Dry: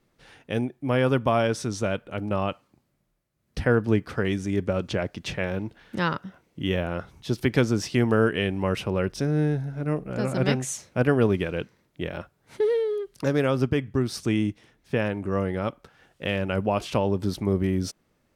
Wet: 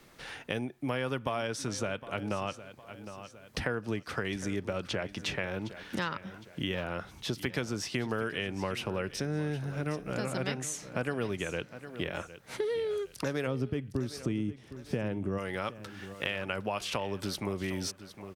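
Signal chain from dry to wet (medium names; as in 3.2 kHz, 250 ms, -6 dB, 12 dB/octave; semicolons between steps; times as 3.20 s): tilt shelf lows -4 dB, about 700 Hz, from 13.46 s lows +4 dB, from 15.37 s lows -7.5 dB; compression 3:1, threshold -32 dBFS, peak gain reduction 13 dB; feedback delay 760 ms, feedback 32%, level -16.5 dB; three bands compressed up and down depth 40%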